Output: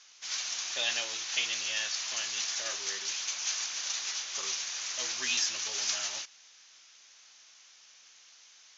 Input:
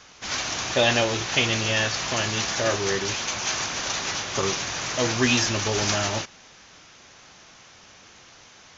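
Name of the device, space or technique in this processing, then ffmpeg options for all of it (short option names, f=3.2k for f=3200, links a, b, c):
piezo pickup straight into a mixer: -af "highpass=82,lowpass=6.7k,aderivative"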